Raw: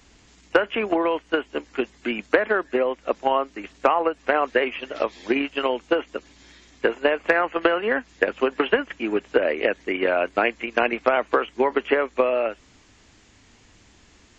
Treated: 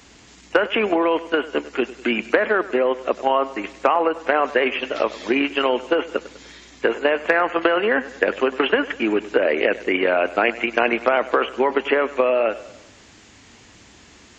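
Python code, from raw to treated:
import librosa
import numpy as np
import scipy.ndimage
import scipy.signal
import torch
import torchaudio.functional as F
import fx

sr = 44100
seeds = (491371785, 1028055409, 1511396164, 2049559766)

p1 = fx.highpass(x, sr, hz=110.0, slope=6)
p2 = fx.over_compress(p1, sr, threshold_db=-26.0, ratio=-1.0)
p3 = p1 + F.gain(torch.from_numpy(p2), -2.5).numpy()
y = fx.echo_feedback(p3, sr, ms=99, feedback_pct=52, wet_db=-17)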